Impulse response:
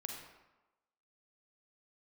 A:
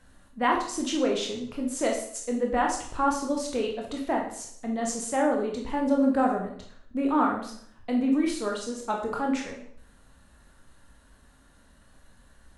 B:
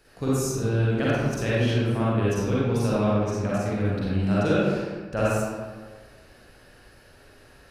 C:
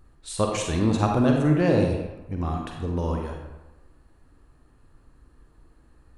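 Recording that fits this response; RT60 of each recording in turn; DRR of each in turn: C; 0.60 s, 1.5 s, 1.1 s; 0.0 dB, -8.5 dB, 1.0 dB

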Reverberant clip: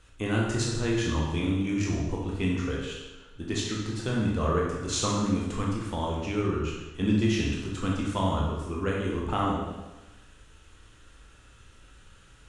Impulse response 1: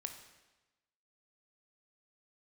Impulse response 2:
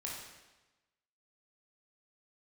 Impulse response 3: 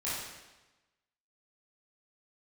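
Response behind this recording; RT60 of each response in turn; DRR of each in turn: 2; 1.1 s, 1.1 s, 1.1 s; 5.5 dB, -4.0 dB, -10.5 dB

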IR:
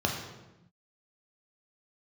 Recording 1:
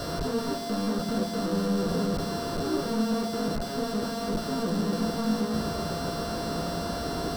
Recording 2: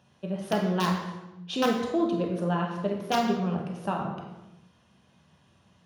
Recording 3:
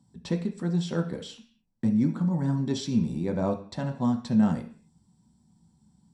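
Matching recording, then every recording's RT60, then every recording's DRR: 2; no single decay rate, 0.95 s, 0.45 s; 1.5 dB, 0.0 dB, 2.5 dB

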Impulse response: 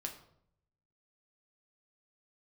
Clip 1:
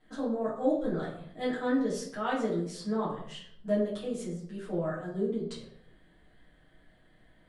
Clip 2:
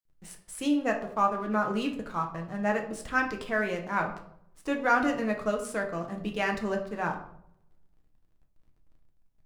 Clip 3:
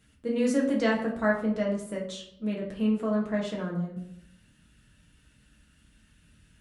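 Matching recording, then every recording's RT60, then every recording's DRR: 2; 0.70 s, 0.70 s, 0.70 s; -9.5 dB, 2.0 dB, -3.0 dB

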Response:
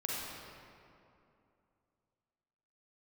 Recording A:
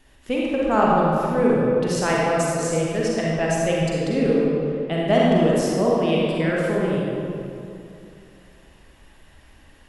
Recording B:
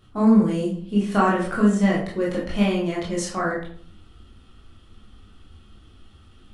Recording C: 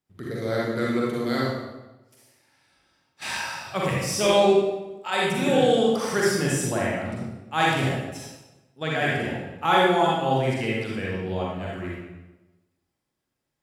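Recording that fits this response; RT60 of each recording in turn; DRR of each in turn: A; 2.7 s, 0.50 s, 1.1 s; -5.0 dB, -5.5 dB, -5.0 dB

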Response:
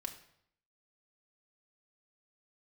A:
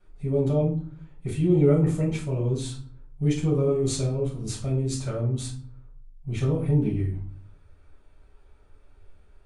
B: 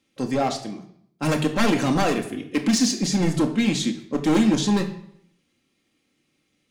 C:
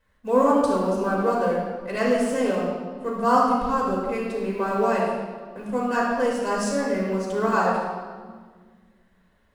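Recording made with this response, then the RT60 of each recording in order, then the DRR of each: B; 0.50 s, 0.70 s, 1.6 s; -8.0 dB, 2.5 dB, -5.5 dB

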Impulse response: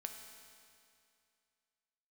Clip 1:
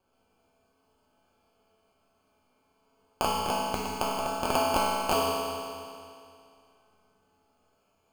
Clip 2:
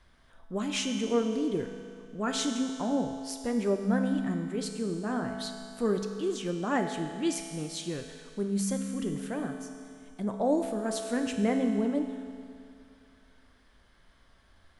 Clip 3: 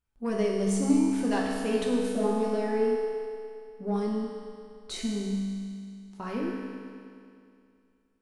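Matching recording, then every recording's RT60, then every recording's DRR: 2; 2.4 s, 2.4 s, 2.4 s; -9.0 dB, 3.5 dB, -4.5 dB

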